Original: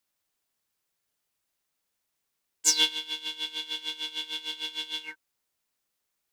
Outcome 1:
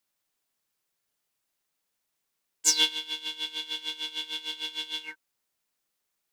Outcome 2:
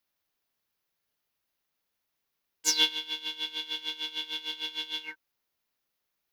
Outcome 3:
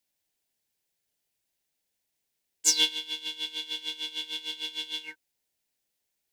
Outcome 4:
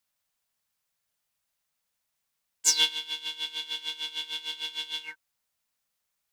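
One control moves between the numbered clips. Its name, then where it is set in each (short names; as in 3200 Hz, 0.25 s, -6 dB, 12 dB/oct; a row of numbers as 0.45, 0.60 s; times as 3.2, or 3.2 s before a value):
bell, frequency: 63, 8200, 1200, 350 Hz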